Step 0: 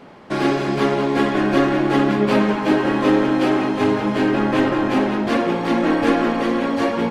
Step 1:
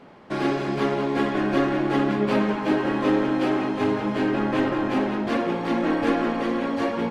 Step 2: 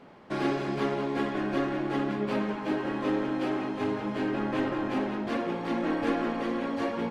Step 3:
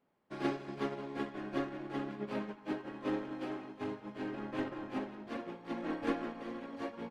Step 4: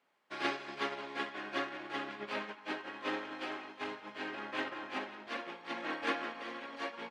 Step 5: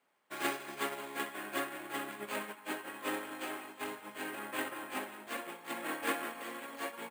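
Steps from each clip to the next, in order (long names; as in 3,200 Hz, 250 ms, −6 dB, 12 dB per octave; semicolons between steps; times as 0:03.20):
high-shelf EQ 5,500 Hz −4.5 dB; level −5 dB
speech leveller within 4 dB 2 s; level −6.5 dB
expander for the loud parts 2.5 to 1, over −39 dBFS; level −3.5 dB
resonant band-pass 2,900 Hz, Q 0.61; level +9.5 dB
bad sample-rate conversion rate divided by 4×, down none, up hold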